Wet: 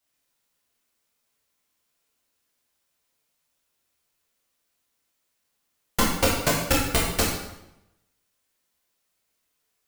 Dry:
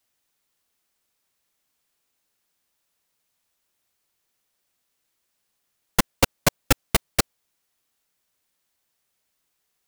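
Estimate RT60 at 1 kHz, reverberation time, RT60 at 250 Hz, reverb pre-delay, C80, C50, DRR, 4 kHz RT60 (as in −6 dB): 0.85 s, 0.85 s, 0.95 s, 10 ms, 5.5 dB, 2.0 dB, −4.5 dB, 0.75 s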